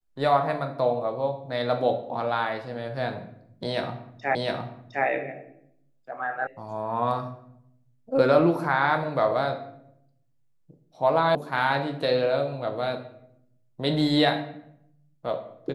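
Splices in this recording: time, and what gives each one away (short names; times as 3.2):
4.35 repeat of the last 0.71 s
6.47 sound cut off
11.35 sound cut off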